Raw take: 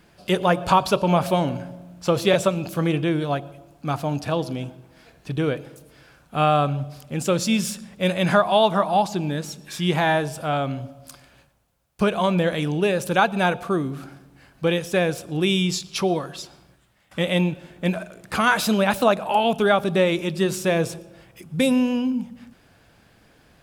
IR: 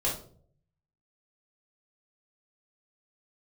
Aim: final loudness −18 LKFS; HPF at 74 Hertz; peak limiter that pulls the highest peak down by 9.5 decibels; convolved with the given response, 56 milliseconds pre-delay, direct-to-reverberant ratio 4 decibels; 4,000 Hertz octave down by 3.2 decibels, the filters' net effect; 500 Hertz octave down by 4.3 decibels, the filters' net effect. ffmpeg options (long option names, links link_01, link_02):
-filter_complex "[0:a]highpass=74,equalizer=frequency=500:width_type=o:gain=-5.5,equalizer=frequency=4000:width_type=o:gain=-4,alimiter=limit=-15dB:level=0:latency=1,asplit=2[link_01][link_02];[1:a]atrim=start_sample=2205,adelay=56[link_03];[link_02][link_03]afir=irnorm=-1:irlink=0,volume=-11.5dB[link_04];[link_01][link_04]amix=inputs=2:normalize=0,volume=6.5dB"